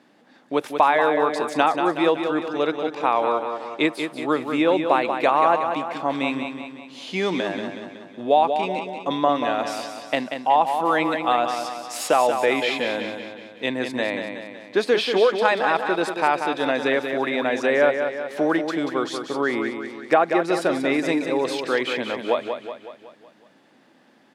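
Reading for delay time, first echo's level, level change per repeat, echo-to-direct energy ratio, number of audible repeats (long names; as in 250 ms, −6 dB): 186 ms, −7.0 dB, −5.5 dB, −5.5 dB, 6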